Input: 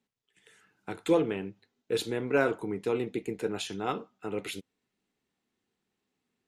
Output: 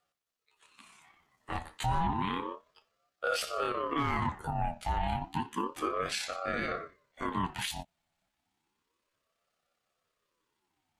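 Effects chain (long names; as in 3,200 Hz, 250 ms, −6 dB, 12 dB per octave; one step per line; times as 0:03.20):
high-pass filter 230 Hz 12 dB per octave
asymmetric clip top −17 dBFS, bottom −15.5 dBFS
time stretch by overlap-add 1.7×, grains 60 ms
brickwall limiter −26 dBFS, peak gain reduction 10.5 dB
ring modulator whose carrier an LFO sweeps 690 Hz, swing 40%, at 0.31 Hz
level +6.5 dB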